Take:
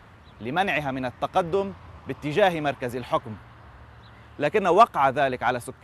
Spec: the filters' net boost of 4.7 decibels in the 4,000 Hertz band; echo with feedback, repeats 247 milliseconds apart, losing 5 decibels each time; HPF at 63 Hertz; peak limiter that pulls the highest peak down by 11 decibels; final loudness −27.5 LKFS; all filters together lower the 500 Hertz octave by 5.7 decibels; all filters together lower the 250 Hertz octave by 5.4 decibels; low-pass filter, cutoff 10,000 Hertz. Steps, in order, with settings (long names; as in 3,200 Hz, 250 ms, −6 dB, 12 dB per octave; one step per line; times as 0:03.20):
high-pass filter 63 Hz
low-pass filter 10,000 Hz
parametric band 250 Hz −5 dB
parametric band 500 Hz −7 dB
parametric band 4,000 Hz +6 dB
brickwall limiter −16 dBFS
repeating echo 247 ms, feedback 56%, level −5 dB
level +1.5 dB